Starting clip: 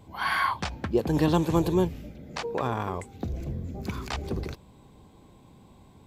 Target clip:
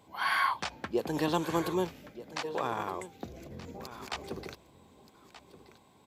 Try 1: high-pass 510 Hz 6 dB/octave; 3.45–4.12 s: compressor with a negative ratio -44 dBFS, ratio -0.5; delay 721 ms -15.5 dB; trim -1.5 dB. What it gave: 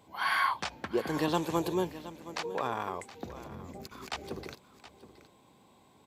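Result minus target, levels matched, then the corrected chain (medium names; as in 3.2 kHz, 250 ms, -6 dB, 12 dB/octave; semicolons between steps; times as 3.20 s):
echo 506 ms early
high-pass 510 Hz 6 dB/octave; 3.45–4.12 s: compressor with a negative ratio -44 dBFS, ratio -0.5; delay 1227 ms -15.5 dB; trim -1.5 dB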